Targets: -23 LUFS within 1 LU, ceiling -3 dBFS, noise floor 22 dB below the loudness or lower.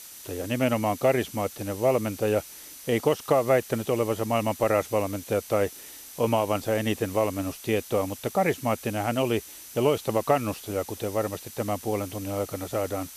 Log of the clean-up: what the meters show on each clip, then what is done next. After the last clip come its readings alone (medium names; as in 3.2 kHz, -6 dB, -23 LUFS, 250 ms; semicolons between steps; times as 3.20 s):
steady tone 6 kHz; tone level -53 dBFS; noise floor -44 dBFS; noise floor target -49 dBFS; loudness -27.0 LUFS; peak level -8.0 dBFS; loudness target -23.0 LUFS
-> band-stop 6 kHz, Q 30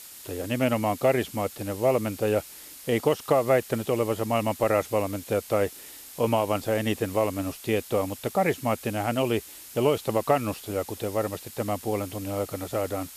steady tone not found; noise floor -45 dBFS; noise floor target -49 dBFS
-> noise print and reduce 6 dB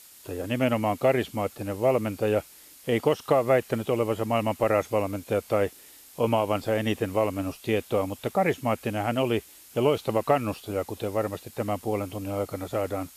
noise floor -51 dBFS; loudness -27.0 LUFS; peak level -8.0 dBFS; loudness target -23.0 LUFS
-> trim +4 dB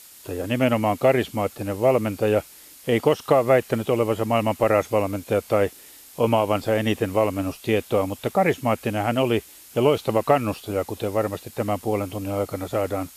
loudness -23.0 LUFS; peak level -4.0 dBFS; noise floor -47 dBFS